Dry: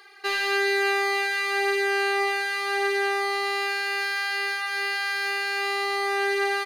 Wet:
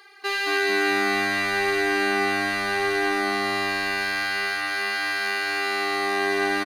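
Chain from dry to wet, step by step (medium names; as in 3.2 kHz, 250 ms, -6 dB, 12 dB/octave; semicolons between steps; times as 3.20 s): frequency-shifting echo 221 ms, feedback 43%, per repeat -96 Hz, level -5 dB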